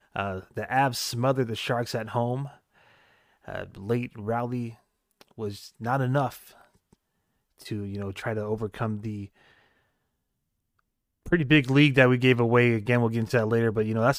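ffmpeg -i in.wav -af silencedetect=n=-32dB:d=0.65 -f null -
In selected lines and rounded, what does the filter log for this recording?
silence_start: 2.46
silence_end: 3.48 | silence_duration: 1.02
silence_start: 6.35
silence_end: 7.66 | silence_duration: 1.31
silence_start: 9.24
silence_end: 11.26 | silence_duration: 2.02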